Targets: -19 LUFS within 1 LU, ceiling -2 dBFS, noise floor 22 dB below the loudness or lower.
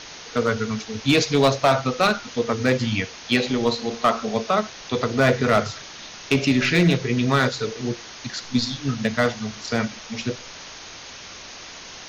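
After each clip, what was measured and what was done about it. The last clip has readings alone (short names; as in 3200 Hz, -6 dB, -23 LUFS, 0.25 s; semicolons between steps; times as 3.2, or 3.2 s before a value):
clipped 0.5%; flat tops at -10.5 dBFS; noise floor -40 dBFS; noise floor target -45 dBFS; loudness -22.5 LUFS; peak -10.5 dBFS; loudness target -19.0 LUFS
-> clip repair -10.5 dBFS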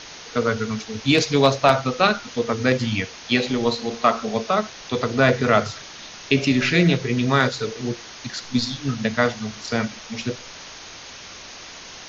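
clipped 0.0%; noise floor -40 dBFS; noise floor target -44 dBFS
-> noise print and reduce 6 dB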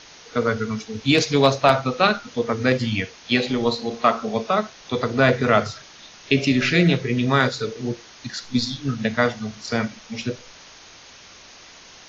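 noise floor -46 dBFS; loudness -21.5 LUFS; peak -1.5 dBFS; loudness target -19.0 LUFS
-> gain +2.5 dB; limiter -2 dBFS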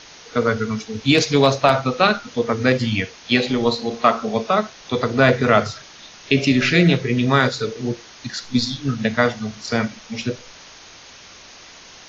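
loudness -19.5 LUFS; peak -2.0 dBFS; noise floor -43 dBFS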